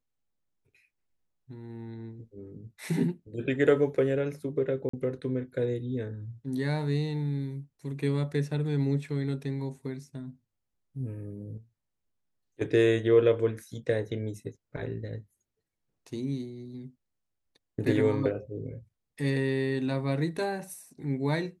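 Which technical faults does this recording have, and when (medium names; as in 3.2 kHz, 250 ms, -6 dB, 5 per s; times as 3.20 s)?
4.89–4.93 s: dropout 44 ms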